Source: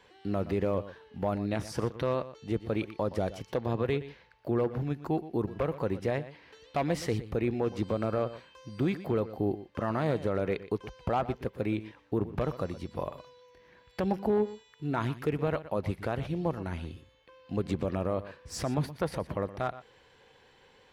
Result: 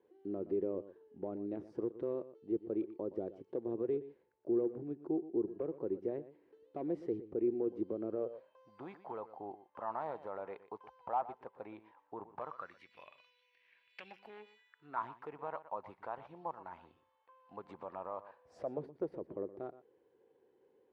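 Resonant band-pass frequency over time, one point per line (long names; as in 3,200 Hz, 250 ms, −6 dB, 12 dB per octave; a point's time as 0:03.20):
resonant band-pass, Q 3.9
0:08.14 360 Hz
0:08.75 890 Hz
0:12.39 890 Hz
0:12.95 2,500 Hz
0:14.47 2,500 Hz
0:15.04 940 Hz
0:18.24 940 Hz
0:18.96 370 Hz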